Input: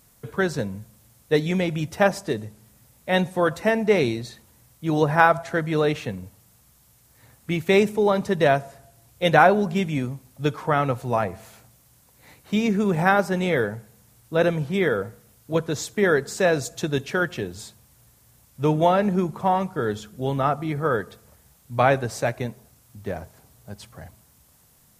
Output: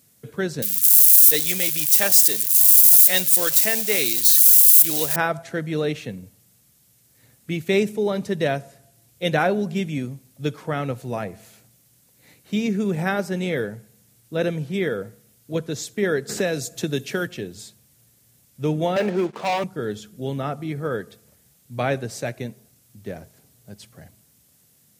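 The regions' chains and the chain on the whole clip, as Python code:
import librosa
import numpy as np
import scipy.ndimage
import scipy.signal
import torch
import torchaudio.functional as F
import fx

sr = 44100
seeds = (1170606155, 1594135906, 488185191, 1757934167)

y = fx.chain(x, sr, fx.crossing_spikes(level_db=-21.0),
    fx.tilt_eq(slope=4.0), at=(0.62, 5.16))
y = fx.chain(y, sr, fx.high_shelf(hz=10000.0, db=7.0),
    fx.band_squash(depth_pct=70), at=(16.29, 17.27))
y = fx.chain(y, sr, fx.bandpass_edges(low_hz=430.0, high_hz=3200.0),
    fx.leveller(passes=3), at=(18.96, 19.64))
y = scipy.signal.sosfilt(scipy.signal.butter(2, 120.0, 'highpass', fs=sr, output='sos'), y)
y = fx.peak_eq(y, sr, hz=990.0, db=-10.5, octaves=1.3)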